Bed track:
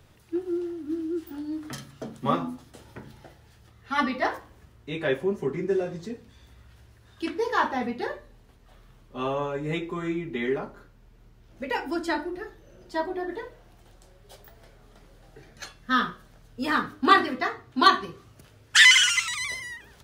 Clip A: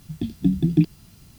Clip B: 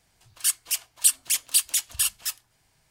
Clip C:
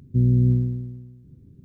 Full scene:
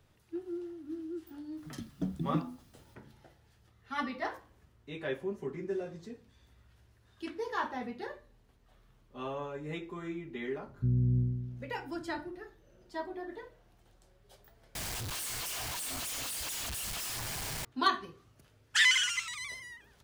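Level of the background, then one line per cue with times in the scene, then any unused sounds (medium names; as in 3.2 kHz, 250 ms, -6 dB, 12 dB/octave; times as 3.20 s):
bed track -10 dB
1.57 s: add A -15.5 dB
10.68 s: add C -17.5 dB + tilt EQ -2.5 dB/octave
14.75 s: replace with B -10 dB + one-bit comparator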